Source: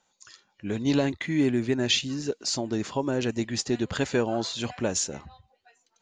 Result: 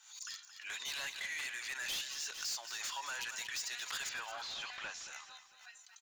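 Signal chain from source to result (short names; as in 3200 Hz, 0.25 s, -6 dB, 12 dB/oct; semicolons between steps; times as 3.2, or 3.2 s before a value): one-sided fold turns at -18 dBFS; HPF 1100 Hz 24 dB/oct; high shelf 2900 Hz +8.5 dB; in parallel at 0 dB: compressor, threshold -41 dBFS, peak gain reduction 23 dB; on the sum: limiter -18 dBFS, peak gain reduction 11.5 dB; soft clip -32.5 dBFS, distortion -7 dB; 4.09–5.08 air absorption 140 m; on a send: feedback echo 0.224 s, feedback 44%, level -12 dB; on the sum: backwards sustainer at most 93 dB/s; gain -3.5 dB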